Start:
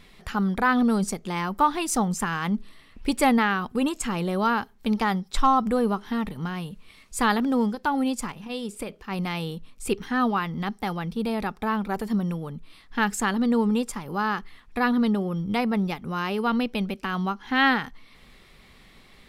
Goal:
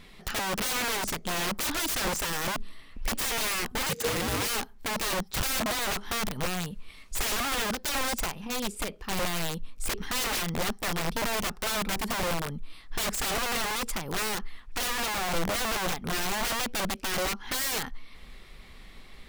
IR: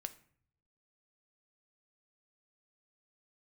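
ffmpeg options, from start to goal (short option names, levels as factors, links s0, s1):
-filter_complex "[0:a]aeval=exprs='(mod(18.8*val(0)+1,2)-1)/18.8':c=same,asubboost=boost=2:cutoff=72,asettb=1/sr,asplit=3[s0][s1][s2];[s0]atrim=end=3.894[s3];[s1]atrim=start=3.89:end=4.48,asetpts=PTS-STARTPTS,afade=t=in:d=0.004:c=qsin,afade=t=out:st=0.586:d=0.004:c=qsin,afreqshift=-490[s4];[s2]atrim=start=4.476[s5];[s3][s4]acrossfade=d=0.004:c1=hsin:c2=qsin[s6];[s6][s5]acrossfade=d=0.004:c1=qsin:c2=hsin,volume=1.12"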